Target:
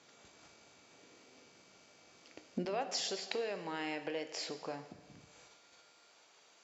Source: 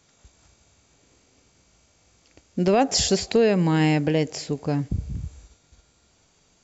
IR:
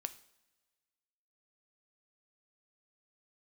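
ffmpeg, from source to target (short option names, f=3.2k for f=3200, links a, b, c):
-filter_complex "[0:a]acompressor=threshold=-32dB:ratio=8,asetnsamples=n=441:p=0,asendcmd='2.65 highpass f 540',highpass=240,lowpass=5k[a];[1:a]atrim=start_sample=2205,asetrate=22491,aresample=44100[b];[a][b]afir=irnorm=-1:irlink=0"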